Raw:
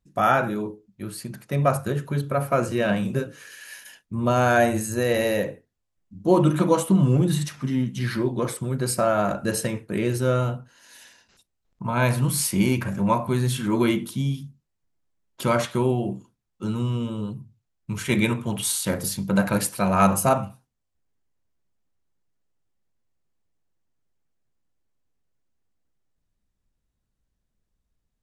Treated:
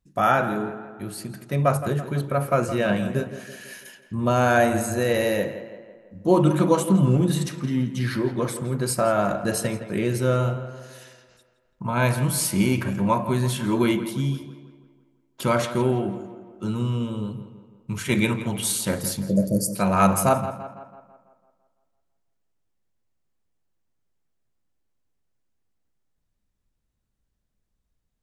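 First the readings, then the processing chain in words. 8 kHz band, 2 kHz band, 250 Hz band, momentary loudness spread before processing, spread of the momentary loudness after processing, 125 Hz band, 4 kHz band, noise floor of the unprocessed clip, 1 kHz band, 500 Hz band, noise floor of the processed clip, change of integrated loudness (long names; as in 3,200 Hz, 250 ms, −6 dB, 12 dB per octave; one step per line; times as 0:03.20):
0.0 dB, 0.0 dB, +0.5 dB, 15 LU, 15 LU, 0.0 dB, 0.0 dB, −78 dBFS, +0.5 dB, +0.5 dB, −74 dBFS, 0.0 dB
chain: time-frequency box erased 0:19.25–0:19.76, 670–4,400 Hz
tape delay 167 ms, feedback 56%, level −11 dB, low-pass 3,000 Hz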